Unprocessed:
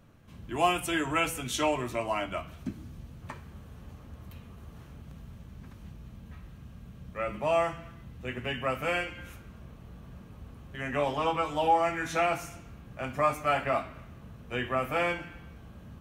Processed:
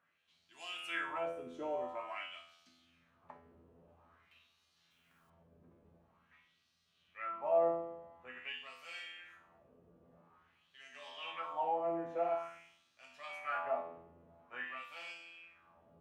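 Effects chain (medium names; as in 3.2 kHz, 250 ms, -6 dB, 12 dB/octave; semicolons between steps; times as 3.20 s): in parallel at -4 dB: saturation -20.5 dBFS, distortion -16 dB; on the sum: feedback comb 84 Hz, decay 0.94 s, harmonics all, mix 90%; LFO band-pass sine 0.48 Hz 420–4700 Hz; 4.90–5.30 s: modulation noise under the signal 12 dB; trim +5 dB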